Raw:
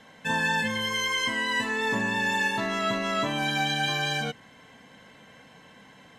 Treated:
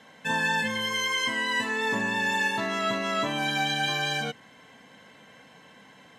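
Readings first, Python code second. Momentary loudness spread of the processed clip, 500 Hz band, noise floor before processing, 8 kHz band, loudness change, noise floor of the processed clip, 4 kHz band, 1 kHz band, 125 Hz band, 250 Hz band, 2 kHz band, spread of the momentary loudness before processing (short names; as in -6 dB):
3 LU, -0.5 dB, -53 dBFS, 0.0 dB, 0.0 dB, -54 dBFS, 0.0 dB, 0.0 dB, -2.5 dB, -1.5 dB, 0.0 dB, 3 LU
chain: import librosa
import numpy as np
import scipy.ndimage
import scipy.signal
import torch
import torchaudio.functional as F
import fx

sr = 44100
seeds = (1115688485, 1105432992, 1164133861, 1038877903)

y = fx.highpass(x, sr, hz=140.0, slope=6)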